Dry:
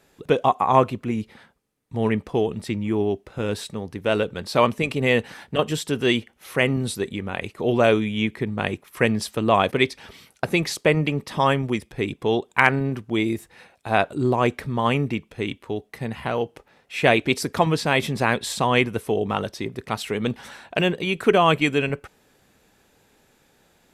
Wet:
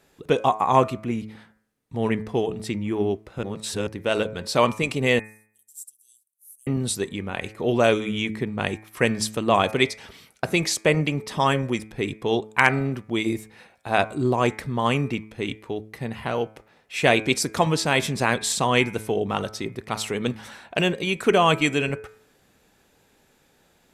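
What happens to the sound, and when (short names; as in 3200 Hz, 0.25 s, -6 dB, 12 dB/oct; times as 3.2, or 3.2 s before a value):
3.43–3.87 reverse
5.19–6.67 inverse Chebyshev high-pass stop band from 2300 Hz, stop band 70 dB
whole clip: de-hum 108.2 Hz, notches 23; dynamic EQ 7200 Hz, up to +8 dB, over -46 dBFS, Q 1; gain -1 dB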